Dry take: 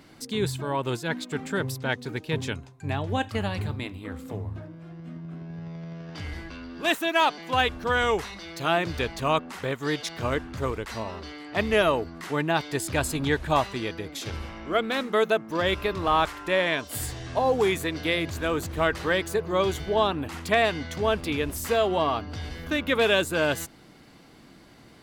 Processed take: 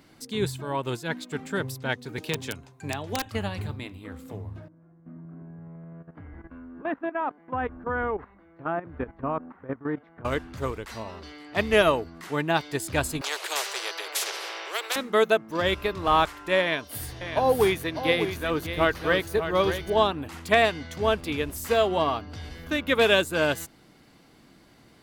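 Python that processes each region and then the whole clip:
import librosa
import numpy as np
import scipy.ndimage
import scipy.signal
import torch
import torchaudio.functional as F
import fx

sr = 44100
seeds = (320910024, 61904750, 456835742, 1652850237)

y = fx.chain(x, sr, fx.low_shelf(hz=120.0, db=-9.5),
    fx.overflow_wrap(gain_db=16.0),
    fx.band_squash(depth_pct=70), at=(2.18, 3.26))
y = fx.chain(y, sr, fx.lowpass(hz=1600.0, slope=24),
    fx.peak_eq(hz=270.0, db=7.5, octaves=0.28),
    fx.level_steps(step_db=13), at=(4.68, 10.25))
y = fx.chain(y, sr, fx.steep_highpass(hz=390.0, slope=96),
    fx.high_shelf(hz=4100.0, db=-9.5),
    fx.spectral_comp(ratio=4.0), at=(13.21, 14.96))
y = fx.chain(y, sr, fx.peak_eq(hz=7500.0, db=-13.5, octaves=0.24),
    fx.echo_single(ms=600, db=-6.5), at=(16.61, 19.9))
y = fx.high_shelf(y, sr, hz=11000.0, db=4.5)
y = fx.upward_expand(y, sr, threshold_db=-31.0, expansion=1.5)
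y = F.gain(torch.from_numpy(y), 2.5).numpy()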